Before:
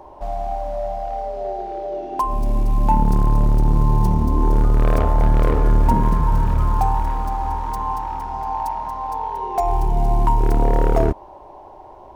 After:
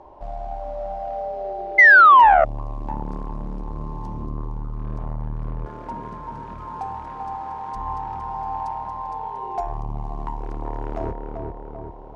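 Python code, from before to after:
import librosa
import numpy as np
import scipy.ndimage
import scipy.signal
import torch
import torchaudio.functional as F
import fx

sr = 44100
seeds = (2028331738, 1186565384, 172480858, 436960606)

y = fx.air_absorb(x, sr, metres=98.0)
y = fx.echo_filtered(y, sr, ms=392, feedback_pct=51, hz=2000.0, wet_db=-7)
y = fx.rider(y, sr, range_db=4, speed_s=2.0)
y = fx.spec_paint(y, sr, seeds[0], shape='fall', start_s=1.78, length_s=0.67, low_hz=620.0, high_hz=2100.0, level_db=-1.0)
y = fx.highpass(y, sr, hz=350.0, slope=6, at=(5.65, 7.74), fade=0.02)
y = fx.transformer_sat(y, sr, knee_hz=510.0)
y = y * 10.0 ** (-8.0 / 20.0)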